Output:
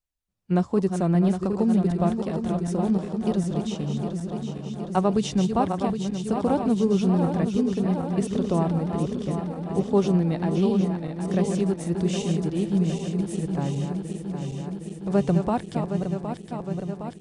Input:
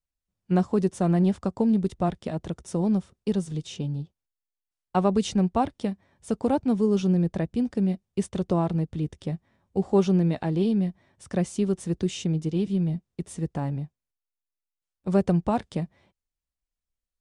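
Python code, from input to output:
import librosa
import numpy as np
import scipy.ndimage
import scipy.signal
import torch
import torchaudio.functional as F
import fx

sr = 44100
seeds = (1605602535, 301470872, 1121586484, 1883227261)

y = fx.reverse_delay_fb(x, sr, ms=382, feedback_pct=83, wet_db=-7.0)
y = fx.wow_flutter(y, sr, seeds[0], rate_hz=2.1, depth_cents=28.0)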